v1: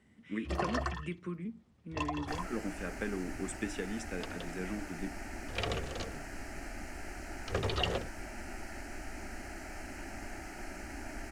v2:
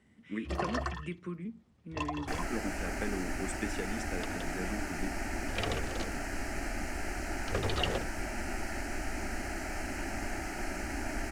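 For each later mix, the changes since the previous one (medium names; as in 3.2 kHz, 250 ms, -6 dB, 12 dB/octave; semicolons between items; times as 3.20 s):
second sound +7.0 dB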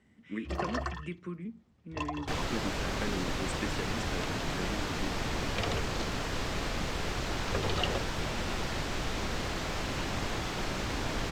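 second sound: remove static phaser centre 720 Hz, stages 8; master: add peaking EQ 9.7 kHz -9 dB 0.26 oct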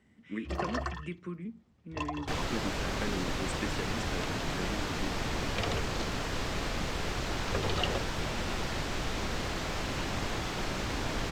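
no change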